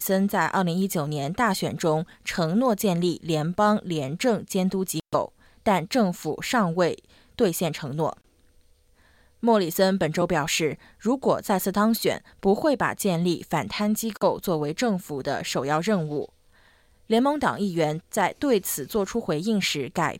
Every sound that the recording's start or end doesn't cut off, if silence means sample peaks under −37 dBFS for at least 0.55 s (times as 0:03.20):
0:09.43–0:16.25